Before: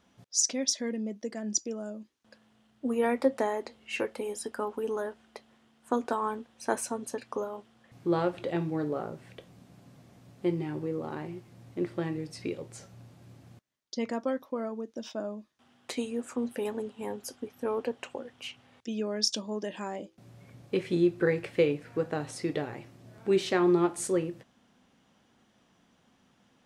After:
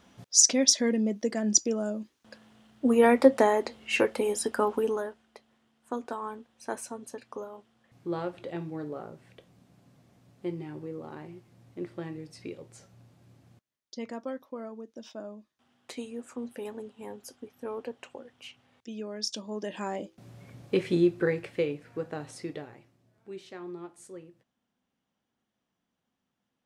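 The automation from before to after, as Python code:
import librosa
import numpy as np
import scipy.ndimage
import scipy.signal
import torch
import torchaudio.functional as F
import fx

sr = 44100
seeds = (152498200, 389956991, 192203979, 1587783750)

y = fx.gain(x, sr, db=fx.line((4.77, 7.0), (5.23, -5.5), (19.24, -5.5), (19.89, 3.0), (20.87, 3.0), (21.67, -4.5), (22.4, -4.5), (23.13, -17.0)))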